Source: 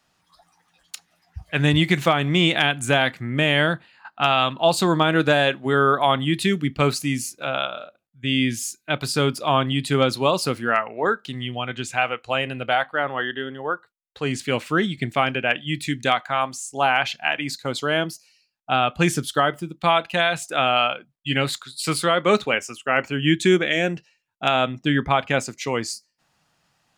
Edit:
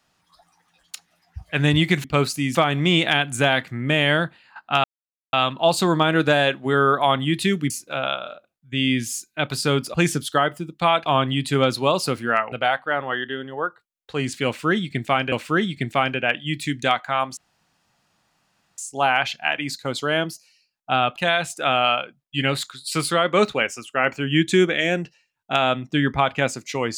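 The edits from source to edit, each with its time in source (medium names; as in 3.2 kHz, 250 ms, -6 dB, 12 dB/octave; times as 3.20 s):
4.33 s: insert silence 0.49 s
6.70–7.21 s: move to 2.04 s
10.91–12.59 s: delete
14.53–15.39 s: loop, 2 plays
16.58 s: insert room tone 1.41 s
18.96–20.08 s: move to 9.45 s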